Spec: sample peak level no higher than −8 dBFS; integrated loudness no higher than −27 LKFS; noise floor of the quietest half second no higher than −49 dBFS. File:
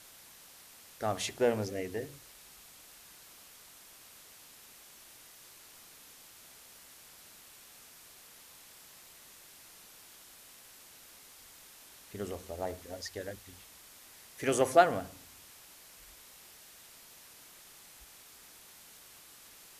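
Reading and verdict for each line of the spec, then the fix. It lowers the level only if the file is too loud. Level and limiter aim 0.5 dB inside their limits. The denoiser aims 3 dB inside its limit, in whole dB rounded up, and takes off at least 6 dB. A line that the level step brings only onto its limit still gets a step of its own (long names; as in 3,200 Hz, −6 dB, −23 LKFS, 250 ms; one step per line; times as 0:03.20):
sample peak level −9.0 dBFS: in spec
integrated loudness −33.0 LKFS: in spec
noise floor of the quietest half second −55 dBFS: in spec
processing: no processing needed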